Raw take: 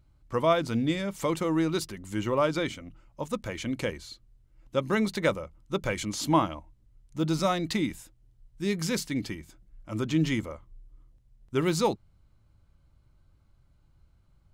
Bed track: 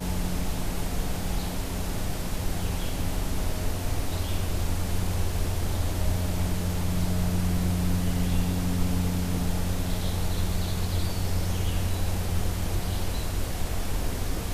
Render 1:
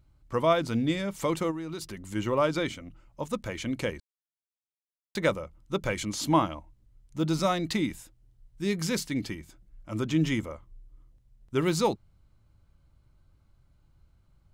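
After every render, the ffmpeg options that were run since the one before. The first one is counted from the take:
ffmpeg -i in.wav -filter_complex "[0:a]asplit=3[link_01][link_02][link_03];[link_01]afade=type=out:start_time=1.5:duration=0.02[link_04];[link_02]acompressor=threshold=-33dB:ratio=5:attack=3.2:release=140:knee=1:detection=peak,afade=type=in:start_time=1.5:duration=0.02,afade=type=out:start_time=2.14:duration=0.02[link_05];[link_03]afade=type=in:start_time=2.14:duration=0.02[link_06];[link_04][link_05][link_06]amix=inputs=3:normalize=0,asettb=1/sr,asplit=3[link_07][link_08][link_09];[link_07]atrim=end=10.114[link_10];[link_08]atrim=start=10.11:end=10.54,asetpts=PTS-STARTPTS,afade=type=in:duration=0.004:curve=qsin,afade=type=out:start_time=0.426:duration=0.004:curve=qsin,bandreject=frequency=4300:width=8[link_11];[link_09]atrim=start=10.536[link_12];[link_10][link_11]acrossfade=duration=0.004:curve1=hsin:curve2=qsin[link_13];[link_13][link_12]acrossfade=duration=0.004:curve1=qsin:curve2=hsin,asplit=3[link_14][link_15][link_16];[link_14]atrim=end=4,asetpts=PTS-STARTPTS,afade=type=out:start_time=3.996:duration=0.004:curve=hsin[link_17];[link_15]atrim=start=4:end=5.15,asetpts=PTS-STARTPTS,volume=0[link_18];[link_16]atrim=start=5.15,asetpts=PTS-STARTPTS,afade=type=in:duration=0.004:curve=hsin[link_19];[link_17][link_18][link_19]concat=n=3:v=0:a=1" out.wav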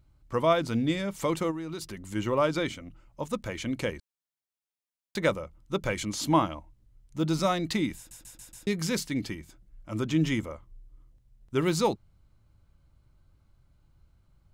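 ffmpeg -i in.wav -filter_complex "[0:a]asplit=6[link_01][link_02][link_03][link_04][link_05][link_06];[link_01]atrim=end=8.112[link_07];[link_02]atrim=start=7.968:end=8.112[link_08];[link_03]atrim=start=7.968:end=8.112[link_09];[link_04]atrim=start=7.968:end=8.112[link_10];[link_05]atrim=start=7.968:end=8.112[link_11];[link_06]atrim=start=8.668[link_12];[link_07][link_08]acrossfade=duration=0.004:curve1=hsin:curve2=hsin[link_13];[link_13][link_09]acrossfade=duration=0.004:curve1=hsin:curve2=hsin[link_14];[link_14][link_10]acrossfade=duration=0.004:curve1=hsin:curve2=hsin[link_15];[link_15][link_11]acrossfade=duration=0.004:curve1=hsin:curve2=hsin[link_16];[link_16][link_12]acrossfade=duration=0.004:curve1=hsin:curve2=hsin" out.wav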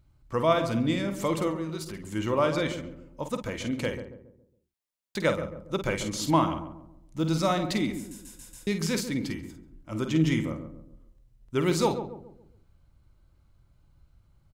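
ffmpeg -i in.wav -filter_complex "[0:a]asplit=2[link_01][link_02];[link_02]adelay=50,volume=-8.5dB[link_03];[link_01][link_03]amix=inputs=2:normalize=0,asplit=2[link_04][link_05];[link_05]adelay=138,lowpass=frequency=820:poles=1,volume=-8dB,asplit=2[link_06][link_07];[link_07]adelay=138,lowpass=frequency=820:poles=1,volume=0.44,asplit=2[link_08][link_09];[link_09]adelay=138,lowpass=frequency=820:poles=1,volume=0.44,asplit=2[link_10][link_11];[link_11]adelay=138,lowpass=frequency=820:poles=1,volume=0.44,asplit=2[link_12][link_13];[link_13]adelay=138,lowpass=frequency=820:poles=1,volume=0.44[link_14];[link_04][link_06][link_08][link_10][link_12][link_14]amix=inputs=6:normalize=0" out.wav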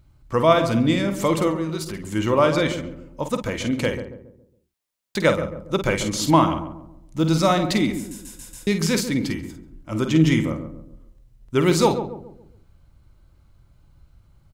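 ffmpeg -i in.wav -af "volume=7dB,alimiter=limit=-3dB:level=0:latency=1" out.wav

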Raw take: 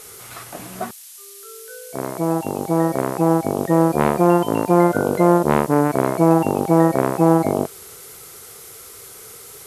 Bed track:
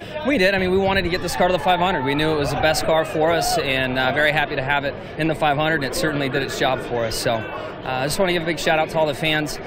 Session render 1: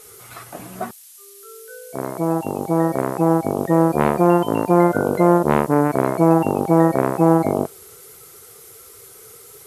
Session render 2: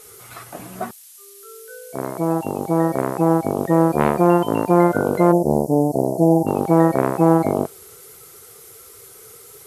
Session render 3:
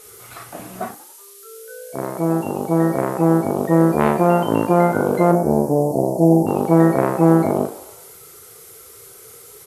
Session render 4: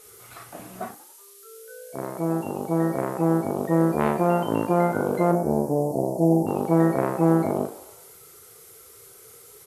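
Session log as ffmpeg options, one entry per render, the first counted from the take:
ffmpeg -i in.wav -af "afftdn=noise_reduction=6:noise_floor=-41" out.wav
ffmpeg -i in.wav -filter_complex "[0:a]asplit=3[link_01][link_02][link_03];[link_01]afade=type=out:start_time=5.31:duration=0.02[link_04];[link_02]asuperstop=centerf=2000:order=12:qfactor=0.5,afade=type=in:start_time=5.31:duration=0.02,afade=type=out:start_time=6.46:duration=0.02[link_05];[link_03]afade=type=in:start_time=6.46:duration=0.02[link_06];[link_04][link_05][link_06]amix=inputs=3:normalize=0" out.wav
ffmpeg -i in.wav -filter_complex "[0:a]asplit=2[link_01][link_02];[link_02]adelay=36,volume=-7dB[link_03];[link_01][link_03]amix=inputs=2:normalize=0,asplit=6[link_04][link_05][link_06][link_07][link_08][link_09];[link_05]adelay=93,afreqshift=63,volume=-17dB[link_10];[link_06]adelay=186,afreqshift=126,volume=-22.4dB[link_11];[link_07]adelay=279,afreqshift=189,volume=-27.7dB[link_12];[link_08]adelay=372,afreqshift=252,volume=-33.1dB[link_13];[link_09]adelay=465,afreqshift=315,volume=-38.4dB[link_14];[link_04][link_10][link_11][link_12][link_13][link_14]amix=inputs=6:normalize=0" out.wav
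ffmpeg -i in.wav -af "volume=-6dB" out.wav

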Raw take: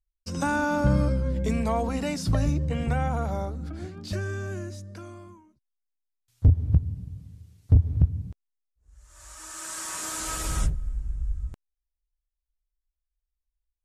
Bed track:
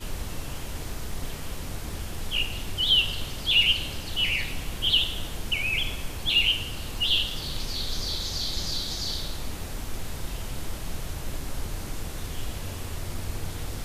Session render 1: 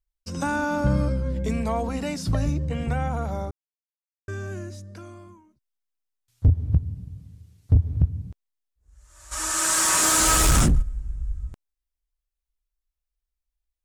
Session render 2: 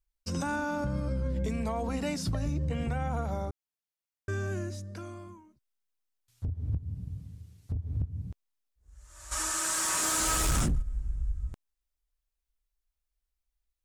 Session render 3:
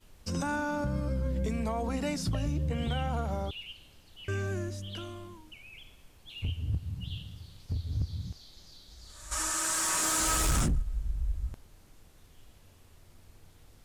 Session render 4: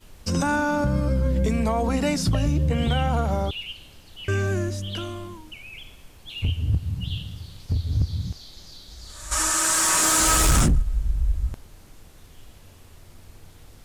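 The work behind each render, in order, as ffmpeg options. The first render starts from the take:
ffmpeg -i in.wav -filter_complex "[0:a]asplit=3[link_01][link_02][link_03];[link_01]afade=type=out:start_time=9.31:duration=0.02[link_04];[link_02]aeval=exprs='0.211*sin(PI/2*3.55*val(0)/0.211)':channel_layout=same,afade=type=in:start_time=9.31:duration=0.02,afade=type=out:start_time=10.81:duration=0.02[link_05];[link_03]afade=type=in:start_time=10.81:duration=0.02[link_06];[link_04][link_05][link_06]amix=inputs=3:normalize=0,asplit=3[link_07][link_08][link_09];[link_07]atrim=end=3.51,asetpts=PTS-STARTPTS,afade=type=out:start_time=3.506:duration=0.004:curve=hsin[link_10];[link_08]atrim=start=3.51:end=4.28,asetpts=PTS-STARTPTS,volume=0[link_11];[link_09]atrim=start=4.28,asetpts=PTS-STARTPTS,afade=type=in:duration=0.004:curve=hsin[link_12];[link_10][link_11][link_12]concat=n=3:v=0:a=1" out.wav
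ffmpeg -i in.wav -af "acompressor=threshold=-20dB:ratio=6,alimiter=limit=-22.5dB:level=0:latency=1:release=366" out.wav
ffmpeg -i in.wav -i bed.wav -filter_complex "[1:a]volume=-23.5dB[link_01];[0:a][link_01]amix=inputs=2:normalize=0" out.wav
ffmpeg -i in.wav -af "volume=9dB" out.wav

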